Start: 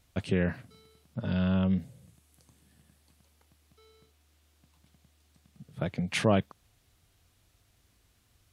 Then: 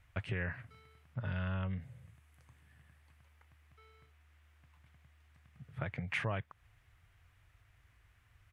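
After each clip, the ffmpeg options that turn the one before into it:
ffmpeg -i in.wav -af "firequalizer=gain_entry='entry(120,0);entry(190,-13);entry(1000,-1);entry(1900,4);entry(4100,-14)':delay=0.05:min_phase=1,acompressor=threshold=-39dB:ratio=2.5,volume=2.5dB" out.wav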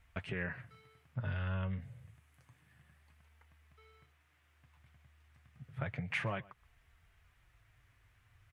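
ffmpeg -i in.wav -filter_complex "[0:a]flanger=delay=4.4:depth=4.4:regen=-39:speed=0.29:shape=sinusoidal,asplit=2[link_01][link_02];[link_02]adelay=122.4,volume=-22dB,highshelf=frequency=4000:gain=-2.76[link_03];[link_01][link_03]amix=inputs=2:normalize=0,volume=3.5dB" out.wav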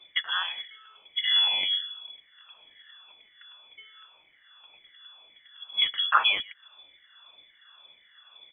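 ffmpeg -i in.wav -af "afftfilt=real='re*pow(10,23/40*sin(2*PI*(0.66*log(max(b,1)*sr/1024/100)/log(2)-(1.9)*(pts-256)/sr)))':imag='im*pow(10,23/40*sin(2*PI*(0.66*log(max(b,1)*sr/1024/100)/log(2)-(1.9)*(pts-256)/sr)))':win_size=1024:overlap=0.75,lowpass=frequency=3000:width_type=q:width=0.5098,lowpass=frequency=3000:width_type=q:width=0.6013,lowpass=frequency=3000:width_type=q:width=0.9,lowpass=frequency=3000:width_type=q:width=2.563,afreqshift=-3500,volume=7dB" out.wav

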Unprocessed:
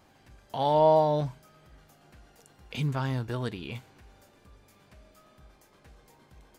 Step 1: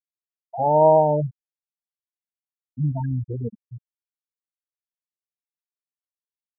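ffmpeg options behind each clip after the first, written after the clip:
ffmpeg -i in.wav -af "afftfilt=real='re*gte(hypot(re,im),0.126)':imag='im*gte(hypot(re,im),0.126)':win_size=1024:overlap=0.75,volume=6dB" out.wav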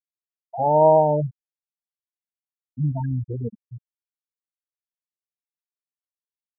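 ffmpeg -i in.wav -af anull out.wav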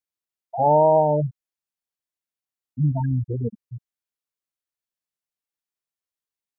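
ffmpeg -i in.wav -af "alimiter=limit=-10.5dB:level=0:latency=1:release=420,volume=2.5dB" out.wav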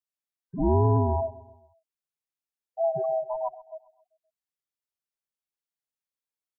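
ffmpeg -i in.wav -af "afftfilt=real='real(if(lt(b,1008),b+24*(1-2*mod(floor(b/24),2)),b),0)':imag='imag(if(lt(b,1008),b+24*(1-2*mod(floor(b/24),2)),b),0)':win_size=2048:overlap=0.75,aecho=1:1:131|262|393|524:0.106|0.053|0.0265|0.0132,volume=-5dB" out.wav

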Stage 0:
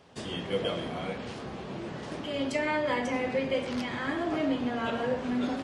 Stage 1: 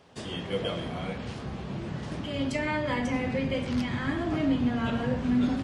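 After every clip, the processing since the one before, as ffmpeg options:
ffmpeg -i in.wav -af "asubboost=boost=5.5:cutoff=200" out.wav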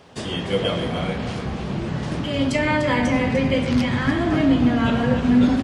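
ffmpeg -i in.wav -af "aecho=1:1:297:0.335,volume=8.5dB" out.wav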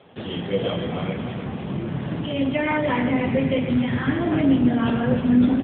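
ffmpeg -i in.wav -af "volume=-1dB" -ar 8000 -c:a libopencore_amrnb -b:a 7950 out.amr

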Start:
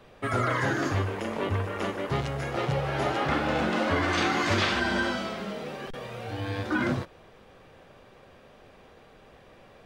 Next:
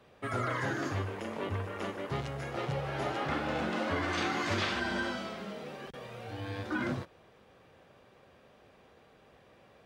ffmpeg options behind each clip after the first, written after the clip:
ffmpeg -i in.wav -af "highpass=58,volume=-6.5dB" out.wav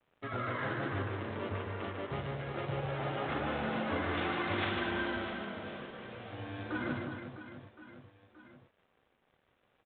ffmpeg -i in.wav -af "aeval=exprs='sgn(val(0))*max(abs(val(0))-0.00133,0)':channel_layout=same,aecho=1:1:150|360|654|1066|1642:0.631|0.398|0.251|0.158|0.1,volume=-3.5dB" -ar 8000 -c:a adpcm_ima_wav out.wav

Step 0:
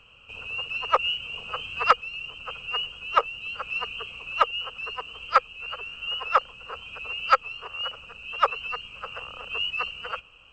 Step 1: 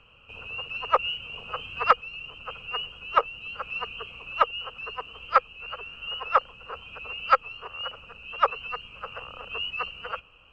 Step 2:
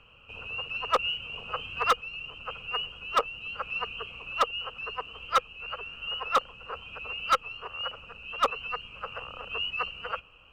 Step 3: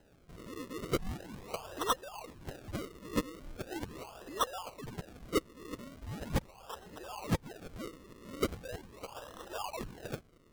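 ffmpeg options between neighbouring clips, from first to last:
ffmpeg -i in.wav -af "aemphasis=mode=reproduction:type=75fm" out.wav
ffmpeg -i in.wav -af "asoftclip=type=hard:threshold=-17dB" out.wav
ffmpeg -i in.wav -af "acrusher=samples=38:mix=1:aa=0.000001:lfo=1:lforange=38:lforate=0.4,volume=-7dB" out.wav

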